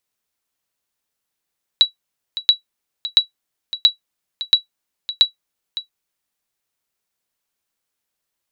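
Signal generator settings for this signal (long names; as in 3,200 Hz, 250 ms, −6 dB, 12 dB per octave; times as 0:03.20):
ping with an echo 3,910 Hz, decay 0.12 s, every 0.68 s, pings 6, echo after 0.56 s, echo −14 dB −2 dBFS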